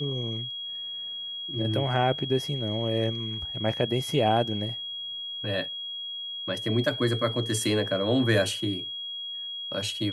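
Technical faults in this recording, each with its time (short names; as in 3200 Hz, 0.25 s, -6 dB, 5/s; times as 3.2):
tone 3300 Hz -33 dBFS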